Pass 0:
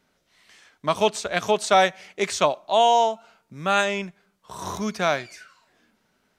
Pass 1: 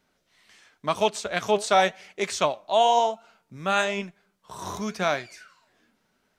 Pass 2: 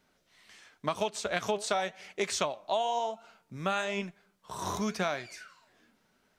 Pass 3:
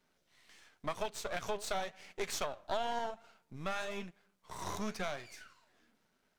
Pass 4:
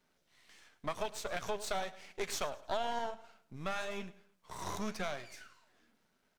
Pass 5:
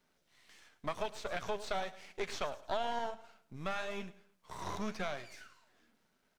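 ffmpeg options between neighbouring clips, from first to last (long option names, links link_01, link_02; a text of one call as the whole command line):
ffmpeg -i in.wav -af "flanger=delay=1.1:depth=9.1:regen=75:speed=0.95:shape=triangular,volume=2dB" out.wav
ffmpeg -i in.wav -af "acompressor=threshold=-26dB:ratio=16" out.wav
ffmpeg -i in.wav -af "aeval=exprs='if(lt(val(0),0),0.251*val(0),val(0))':channel_layout=same,volume=-2.5dB" out.wav
ffmpeg -i in.wav -af "aecho=1:1:107|214|321:0.119|0.0404|0.0137" out.wav
ffmpeg -i in.wav -filter_complex "[0:a]acrossover=split=5000[link_01][link_02];[link_02]acompressor=threshold=-57dB:ratio=4:attack=1:release=60[link_03];[link_01][link_03]amix=inputs=2:normalize=0" out.wav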